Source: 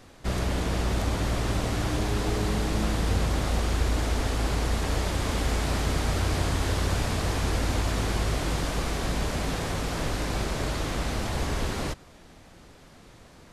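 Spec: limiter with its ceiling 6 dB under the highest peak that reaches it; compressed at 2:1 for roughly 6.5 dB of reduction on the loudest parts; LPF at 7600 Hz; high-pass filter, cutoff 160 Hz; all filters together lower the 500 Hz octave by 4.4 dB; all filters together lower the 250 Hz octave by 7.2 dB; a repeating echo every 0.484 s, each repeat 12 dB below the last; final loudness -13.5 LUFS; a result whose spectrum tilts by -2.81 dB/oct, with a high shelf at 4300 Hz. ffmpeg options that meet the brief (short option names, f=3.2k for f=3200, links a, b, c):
-af "highpass=160,lowpass=7.6k,equalizer=f=250:t=o:g=-7.5,equalizer=f=500:t=o:g=-3.5,highshelf=f=4.3k:g=5,acompressor=threshold=-41dB:ratio=2,alimiter=level_in=7.5dB:limit=-24dB:level=0:latency=1,volume=-7.5dB,aecho=1:1:484|968|1452:0.251|0.0628|0.0157,volume=26.5dB"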